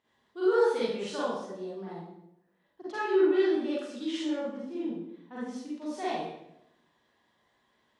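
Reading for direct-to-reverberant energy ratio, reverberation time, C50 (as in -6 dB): -9.5 dB, 0.80 s, -4.0 dB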